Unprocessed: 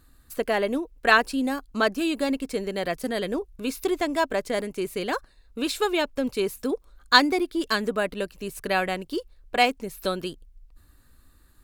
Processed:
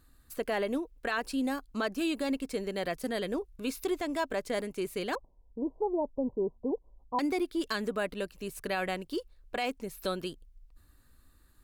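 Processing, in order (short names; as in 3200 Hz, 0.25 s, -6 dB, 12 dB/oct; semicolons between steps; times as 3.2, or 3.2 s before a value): 5.15–7.19 steep low-pass 1000 Hz 96 dB/oct; limiter -16.5 dBFS, peak gain reduction 11 dB; gain -5 dB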